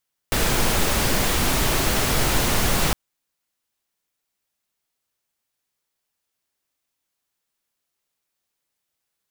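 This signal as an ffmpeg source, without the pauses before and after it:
-f lavfi -i "anoisesrc=c=pink:a=0.513:d=2.61:r=44100:seed=1"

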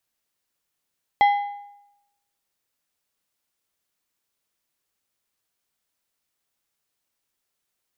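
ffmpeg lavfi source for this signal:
-f lavfi -i "aevalsrc='0.282*pow(10,-3*t/0.87)*sin(2*PI*814*t)+0.0891*pow(10,-3*t/0.661)*sin(2*PI*2035*t)+0.0282*pow(10,-3*t/0.574)*sin(2*PI*3256*t)+0.00891*pow(10,-3*t/0.537)*sin(2*PI*4070*t)+0.00282*pow(10,-3*t/0.496)*sin(2*PI*5291*t)':d=1.55:s=44100"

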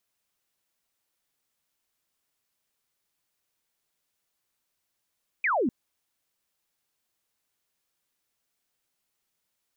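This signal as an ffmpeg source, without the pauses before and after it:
-f lavfi -i "aevalsrc='0.0794*clip(t/0.002,0,1)*clip((0.25-t)/0.002,0,1)*sin(2*PI*2500*0.25/log(210/2500)*(exp(log(210/2500)*t/0.25)-1))':d=0.25:s=44100"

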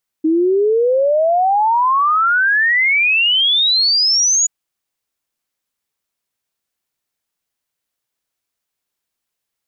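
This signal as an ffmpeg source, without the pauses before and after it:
-f lavfi -i "aevalsrc='0.282*clip(min(t,4.23-t)/0.01,0,1)*sin(2*PI*310*4.23/log(6900/310)*(exp(log(6900/310)*t/4.23)-1))':d=4.23:s=44100"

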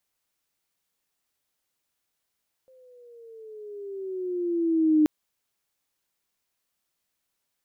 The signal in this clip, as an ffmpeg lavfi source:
-f lavfi -i "aevalsrc='pow(10,(-15+37.5*(t/2.38-1))/20)*sin(2*PI*524*2.38/(-9.5*log(2)/12)*(exp(-9.5*log(2)/12*t/2.38)-1))':d=2.38:s=44100"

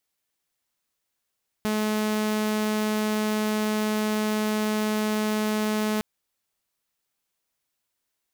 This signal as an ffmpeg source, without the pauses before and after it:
-f lavfi -i "aevalsrc='0.0944*(2*mod(214*t,1)-1)':d=4.36:s=44100"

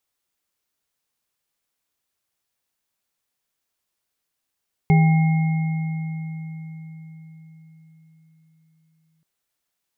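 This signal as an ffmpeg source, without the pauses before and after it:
-f lavfi -i "aevalsrc='0.282*pow(10,-3*t/4.92)*sin(2*PI*160*t)+0.0708*pow(10,-3*t/0.49)*sin(2*PI*408*t)+0.0708*pow(10,-3*t/2.92)*sin(2*PI*792*t)+0.0447*pow(10,-3*t/4.07)*sin(2*PI*2150*t)':d=4.33:s=44100"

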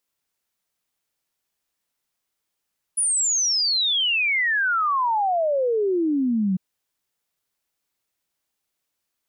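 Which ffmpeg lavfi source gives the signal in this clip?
-f lavfi -i "aevalsrc='0.119*clip(min(t,3.6-t)/0.01,0,1)*sin(2*PI*10000*3.6/log(180/10000)*(exp(log(180/10000)*t/3.6)-1))':d=3.6:s=44100"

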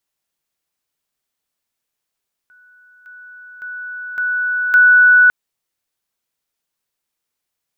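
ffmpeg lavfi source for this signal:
-f lavfi -i "aevalsrc='pow(10,(-46+10*floor(t/0.56))/20)*sin(2*PI*1480*t)':d=2.8:s=44100"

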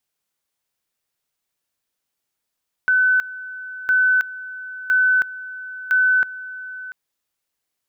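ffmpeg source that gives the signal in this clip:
-f lavfi -i "aevalsrc='pow(10,(-13-17*gte(mod(t,1.01),0.32))/20)*sin(2*PI*1510*t)':d=4.04:s=44100"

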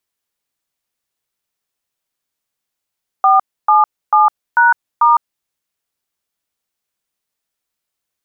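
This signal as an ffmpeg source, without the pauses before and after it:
-f lavfi -i "aevalsrc='0.335*clip(min(mod(t,0.443),0.157-mod(t,0.443))/0.002,0,1)*(eq(floor(t/0.443),0)*(sin(2*PI*770*mod(t,0.443))+sin(2*PI*1209*mod(t,0.443)))+eq(floor(t/0.443),1)*(sin(2*PI*852*mod(t,0.443))+sin(2*PI*1209*mod(t,0.443)))+eq(floor(t/0.443),2)*(sin(2*PI*852*mod(t,0.443))+sin(2*PI*1209*mod(t,0.443)))+eq(floor(t/0.443),3)*(sin(2*PI*941*mod(t,0.443))+sin(2*PI*1477*mod(t,0.443)))+eq(floor(t/0.443),4)*(sin(2*PI*941*mod(t,0.443))+sin(2*PI*1209*mod(t,0.443))))':d=2.215:s=44100"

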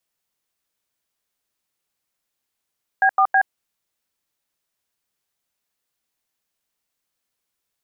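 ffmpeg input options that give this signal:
-f lavfi -i "aevalsrc='0.178*clip(min(mod(t,0.161),0.073-mod(t,0.161))/0.002,0,1)*(eq(floor(t/0.161),0)*(sin(2*PI*770*mod(t,0.161))+sin(2*PI*1633*mod(t,0.161)))+eq(floor(t/0.161),1)*(sin(2*PI*770*mod(t,0.161))+sin(2*PI*1209*mod(t,0.161)))+eq(floor(t/0.161),2)*(sin(2*PI*770*mod(t,0.161))+sin(2*PI*1633*mod(t,0.161))))':d=0.483:s=44100"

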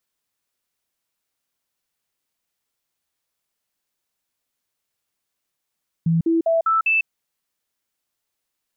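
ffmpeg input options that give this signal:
-f lavfi -i "aevalsrc='0.178*clip(min(mod(t,0.2),0.15-mod(t,0.2))/0.005,0,1)*sin(2*PI*165*pow(2,floor(t/0.2)/1)*mod(t,0.2))':d=1:s=44100"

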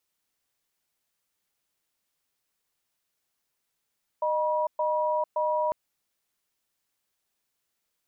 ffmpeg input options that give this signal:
-f lavfi -i "aevalsrc='0.0501*(sin(2*PI*615*t)+sin(2*PI*965*t))*clip(min(mod(t,0.57),0.45-mod(t,0.57))/0.005,0,1)':d=1.5:s=44100"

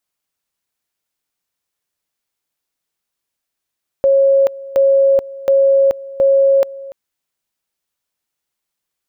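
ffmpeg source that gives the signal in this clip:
-f lavfi -i "aevalsrc='pow(10,(-8-19.5*gte(mod(t,0.72),0.43))/20)*sin(2*PI*547*t)':d=2.88:s=44100"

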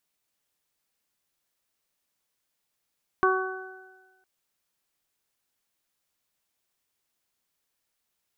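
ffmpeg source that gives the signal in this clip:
-f lavfi -i "aevalsrc='0.0891*pow(10,-3*t/1.19)*sin(2*PI*376*t)+0.0398*pow(10,-3*t/1.4)*sin(2*PI*752*t)+0.106*pow(10,-3*t/0.78)*sin(2*PI*1128*t)+0.0596*pow(10,-3*t/1.42)*sin(2*PI*1504*t)':d=1.01:s=44100"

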